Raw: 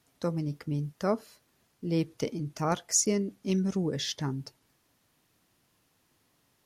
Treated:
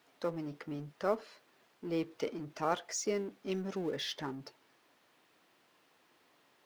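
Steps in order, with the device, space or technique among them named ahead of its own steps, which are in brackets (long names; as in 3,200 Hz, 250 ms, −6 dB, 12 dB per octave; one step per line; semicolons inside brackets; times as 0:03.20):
phone line with mismatched companding (band-pass filter 310–3,500 Hz; mu-law and A-law mismatch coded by mu)
parametric band 230 Hz −2.5 dB 0.77 octaves
level −3 dB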